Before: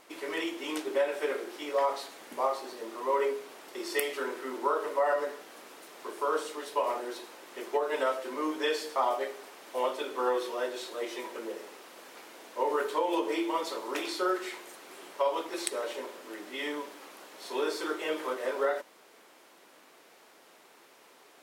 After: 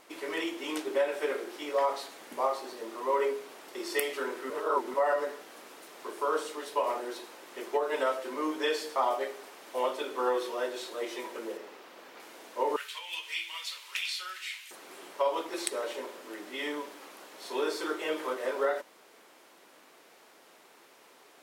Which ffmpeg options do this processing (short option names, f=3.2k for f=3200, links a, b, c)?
-filter_complex "[0:a]asettb=1/sr,asplit=3[a][b][c];[a]atrim=end=11.574[d];[b]atrim=start=11.57:end=12.2,asetpts=PTS-STARTPTS,afade=t=in:d=0.004:c=qsin,afade=t=out:st=0.626:d=0.004:c=qsin,equalizer=f=9.9k:t=o:w=1.4:g=-9[e];[c]atrim=start=12.196[f];[d][e]acrossfade=d=0.004:c1=hsin:c2=qsin[g];[g][f]acrossfade=d=0.004:c1=qsin:c2=hsin,asettb=1/sr,asplit=3[h][i][j];[h]atrim=end=12.764[k];[i]atrim=start=12.76:end=14.71,asetpts=PTS-STARTPTS,afade=t=in:d=0.004:c=qsin,afade=t=out:st=1.946:d=0.004:c=qsin,highpass=f=2.6k:t=q:w=2.2[l];[j]atrim=start=14.706[m];[k][l]acrossfade=d=0.004:c1=hsin:c2=qsin[n];[n][m]acrossfade=d=0.004:c1=qsin:c2=hsin,asplit=3[o][p][q];[o]atrim=end=4.502[r];[p]atrim=start=4.498:end=4.942,asetpts=PTS-STARTPTS,areverse[s];[q]atrim=start=4.938[t];[r][s]acrossfade=d=0.004:c1=hsin:c2=hsin[u];[u][t]acrossfade=d=0.004:c1=hsin:c2=hsin"